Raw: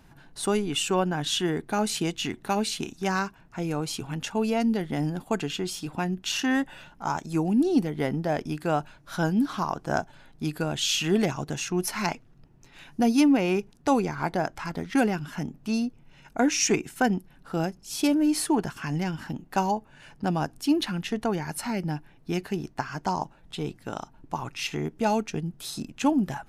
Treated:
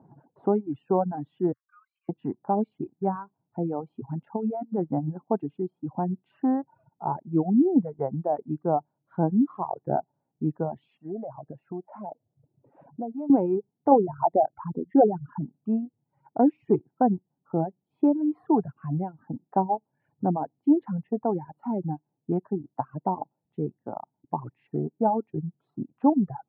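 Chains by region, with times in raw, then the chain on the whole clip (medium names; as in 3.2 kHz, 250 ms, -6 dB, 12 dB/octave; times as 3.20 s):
1.52–2.09 s: Chebyshev high-pass 1.1 kHz, order 10 + compression 2.5:1, threshold -43 dBFS
4.36–5.21 s: treble shelf 4.6 kHz -7 dB + compressor with a negative ratio -27 dBFS, ratio -0.5
10.97–13.30 s: peaking EQ 600 Hz +11 dB 0.56 oct + compression 3:1, threshold -37 dBFS
13.91–15.42 s: resonances exaggerated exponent 2 + dynamic bell 770 Hz, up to +5 dB, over -36 dBFS, Q 1 + upward compressor, threshold -27 dBFS
whole clip: reverb removal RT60 1.1 s; elliptic band-pass 120–870 Hz, stop band 70 dB; reverb removal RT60 1.9 s; trim +3.5 dB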